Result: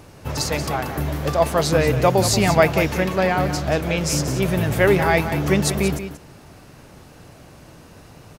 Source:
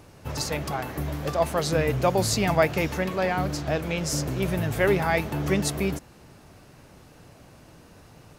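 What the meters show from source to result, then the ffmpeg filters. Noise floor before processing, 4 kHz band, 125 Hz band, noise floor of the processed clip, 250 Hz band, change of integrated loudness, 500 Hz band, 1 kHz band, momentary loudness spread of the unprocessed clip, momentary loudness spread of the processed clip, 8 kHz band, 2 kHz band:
−52 dBFS, +6.0 dB, +6.0 dB, −46 dBFS, +6.0 dB, +6.0 dB, +6.0 dB, +6.0 dB, 8 LU, 8 LU, +6.0 dB, +6.0 dB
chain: -af "aecho=1:1:183:0.299,volume=5.5dB"

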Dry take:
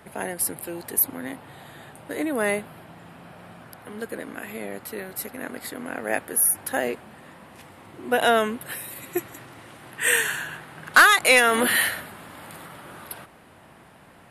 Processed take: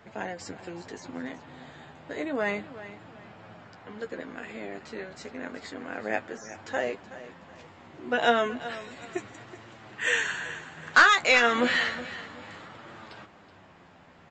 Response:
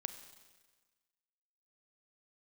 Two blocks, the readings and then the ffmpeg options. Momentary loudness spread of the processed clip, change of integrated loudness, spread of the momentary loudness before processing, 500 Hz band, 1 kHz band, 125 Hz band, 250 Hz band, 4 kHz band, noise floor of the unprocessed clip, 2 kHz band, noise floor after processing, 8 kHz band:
24 LU, −4.0 dB, 24 LU, −4.0 dB, −3.0 dB, −4.0 dB, −3.5 dB, −3.5 dB, −51 dBFS, −3.5 dB, −54 dBFS, −16.0 dB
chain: -af "flanger=delay=8.7:depth=4.5:regen=32:speed=0.31:shape=triangular,aecho=1:1:374|748|1122:0.178|0.0569|0.0182,aresample=16000,aresample=44100"

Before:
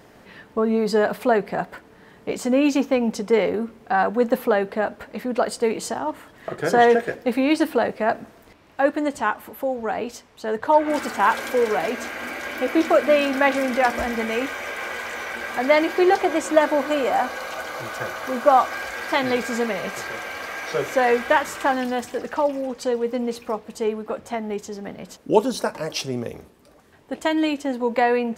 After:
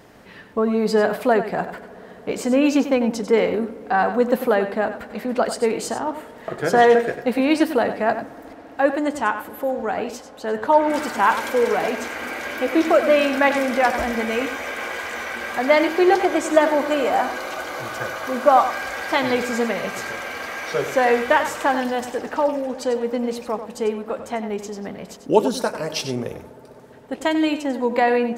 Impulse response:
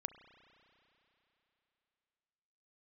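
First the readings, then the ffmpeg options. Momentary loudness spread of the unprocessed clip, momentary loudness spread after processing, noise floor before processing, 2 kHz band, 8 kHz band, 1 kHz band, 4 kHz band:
12 LU, 12 LU, −50 dBFS, +1.5 dB, +1.5 dB, +1.5 dB, +1.5 dB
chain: -filter_complex "[0:a]asplit=2[link_01][link_02];[1:a]atrim=start_sample=2205,asetrate=22050,aresample=44100,adelay=95[link_03];[link_02][link_03]afir=irnorm=-1:irlink=0,volume=-11dB[link_04];[link_01][link_04]amix=inputs=2:normalize=0,volume=1dB"

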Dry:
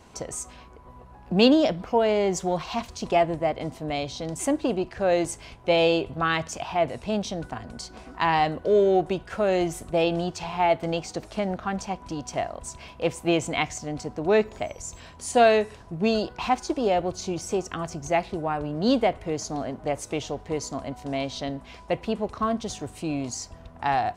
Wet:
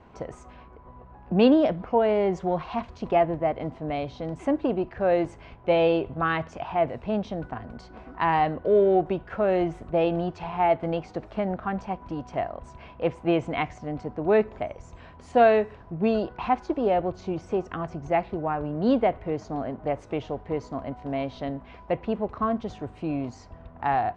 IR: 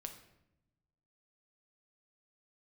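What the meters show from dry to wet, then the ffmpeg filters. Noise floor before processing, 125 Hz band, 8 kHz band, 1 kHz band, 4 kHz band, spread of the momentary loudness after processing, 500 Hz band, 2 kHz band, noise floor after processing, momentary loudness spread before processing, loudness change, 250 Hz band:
−48 dBFS, 0.0 dB, below −20 dB, 0.0 dB, −9.5 dB, 13 LU, 0.0 dB, −3.0 dB, −49 dBFS, 13 LU, −0.5 dB, 0.0 dB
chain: -af "lowpass=2000"

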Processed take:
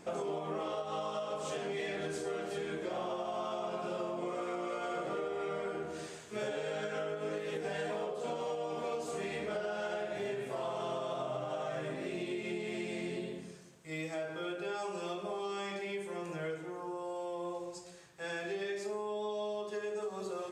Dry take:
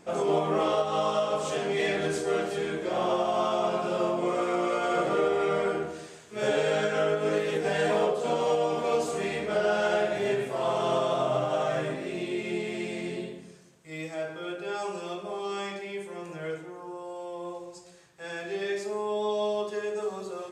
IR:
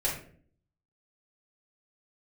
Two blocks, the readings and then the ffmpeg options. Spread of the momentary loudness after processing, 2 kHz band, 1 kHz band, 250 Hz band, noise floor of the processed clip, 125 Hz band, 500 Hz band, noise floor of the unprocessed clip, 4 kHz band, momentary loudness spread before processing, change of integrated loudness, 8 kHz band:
4 LU, −8.5 dB, −9.5 dB, −8.0 dB, −48 dBFS, −8.5 dB, −9.5 dB, −48 dBFS, −8.5 dB, 12 LU, −9.5 dB, −7.5 dB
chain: -af "acompressor=threshold=-35dB:ratio=6"

